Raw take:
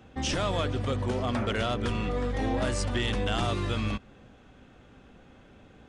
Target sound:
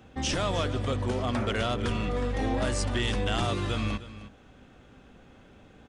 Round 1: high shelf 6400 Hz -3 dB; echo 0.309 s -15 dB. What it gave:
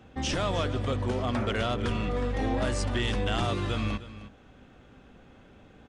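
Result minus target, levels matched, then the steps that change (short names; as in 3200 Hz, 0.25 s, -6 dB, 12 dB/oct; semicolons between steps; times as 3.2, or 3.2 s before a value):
8000 Hz band -3.0 dB
change: high shelf 6400 Hz +3 dB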